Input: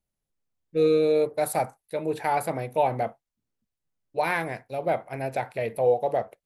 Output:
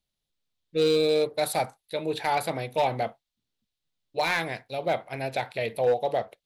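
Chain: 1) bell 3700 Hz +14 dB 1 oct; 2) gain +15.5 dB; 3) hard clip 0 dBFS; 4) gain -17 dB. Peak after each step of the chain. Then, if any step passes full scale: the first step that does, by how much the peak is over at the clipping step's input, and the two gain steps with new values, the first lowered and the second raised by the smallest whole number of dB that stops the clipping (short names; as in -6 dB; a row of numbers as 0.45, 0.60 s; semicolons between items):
-9.0, +6.5, 0.0, -17.0 dBFS; step 2, 6.5 dB; step 2 +8.5 dB, step 4 -10 dB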